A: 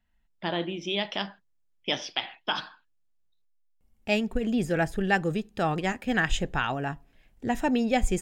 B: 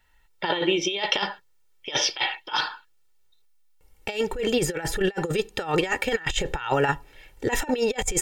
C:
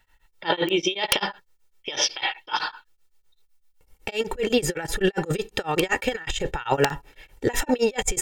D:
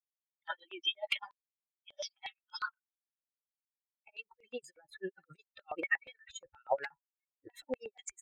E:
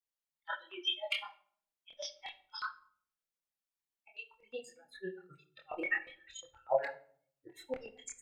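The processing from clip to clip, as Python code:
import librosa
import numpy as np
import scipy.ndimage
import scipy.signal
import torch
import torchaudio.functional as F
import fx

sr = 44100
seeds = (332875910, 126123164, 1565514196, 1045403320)

y1 = fx.low_shelf(x, sr, hz=300.0, db=-10.5)
y1 = y1 + 0.72 * np.pad(y1, (int(2.2 * sr / 1000.0), 0))[:len(y1)]
y1 = fx.over_compress(y1, sr, threshold_db=-33.0, ratio=-0.5)
y1 = F.gain(torch.from_numpy(y1), 9.0).numpy()
y2 = (np.mod(10.0 ** (10.0 / 20.0) * y1 + 1.0, 2.0) - 1.0) / 10.0 ** (10.0 / 20.0)
y2 = y2 * np.abs(np.cos(np.pi * 7.9 * np.arange(len(y2)) / sr))
y2 = F.gain(torch.from_numpy(y2), 3.5).numpy()
y3 = fx.bin_expand(y2, sr, power=3.0)
y3 = fx.rider(y3, sr, range_db=5, speed_s=0.5)
y3 = fx.filter_held_bandpass(y3, sr, hz=8.4, low_hz=610.0, high_hz=5800.0)
y3 = F.gain(torch.from_numpy(y3), 2.5).numpy()
y4 = fx.chorus_voices(y3, sr, voices=6, hz=1.2, base_ms=25, depth_ms=3.0, mix_pct=45)
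y4 = fx.room_shoebox(y4, sr, seeds[0], volume_m3=830.0, walls='furnished', distance_m=0.74)
y4 = F.gain(torch.from_numpy(y4), 2.5).numpy()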